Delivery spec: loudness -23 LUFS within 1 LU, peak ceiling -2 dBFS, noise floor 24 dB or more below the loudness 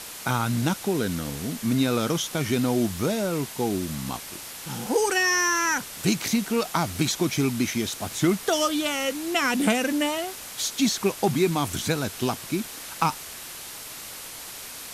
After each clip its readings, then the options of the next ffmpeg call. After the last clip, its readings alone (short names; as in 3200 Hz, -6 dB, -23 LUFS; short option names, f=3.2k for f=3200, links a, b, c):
noise floor -39 dBFS; noise floor target -49 dBFS; loudness -25.0 LUFS; peak -7.5 dBFS; loudness target -23.0 LUFS
-> -af "afftdn=nr=10:nf=-39"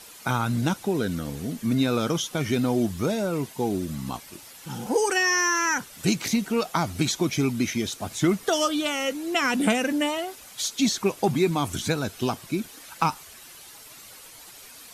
noise floor -46 dBFS; noise floor target -50 dBFS
-> -af "afftdn=nr=6:nf=-46"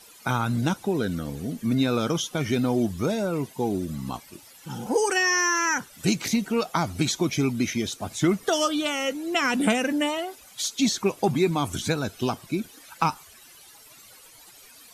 noise floor -50 dBFS; loudness -25.5 LUFS; peak -7.5 dBFS; loudness target -23.0 LUFS
-> -af "volume=2.5dB"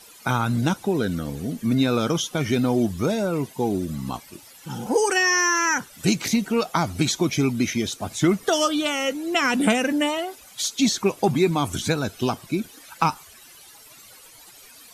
loudness -23.0 LUFS; peak -5.0 dBFS; noise floor -48 dBFS